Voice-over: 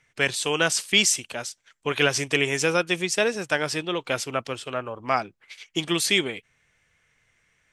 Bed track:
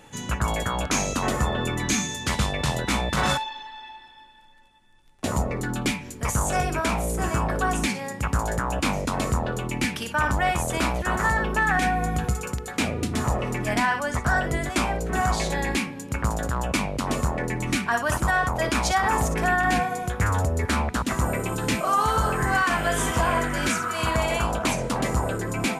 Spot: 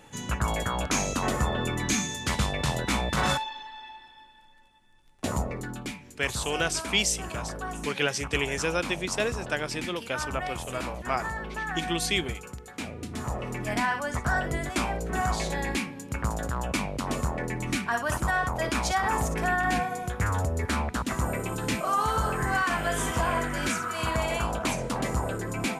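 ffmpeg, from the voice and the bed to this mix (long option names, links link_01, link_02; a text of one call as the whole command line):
ffmpeg -i stem1.wav -i stem2.wav -filter_complex "[0:a]adelay=6000,volume=-5.5dB[link_01];[1:a]volume=4.5dB,afade=type=out:start_time=5.22:duration=0.63:silence=0.375837,afade=type=in:start_time=12.98:duration=0.86:silence=0.446684[link_02];[link_01][link_02]amix=inputs=2:normalize=0" out.wav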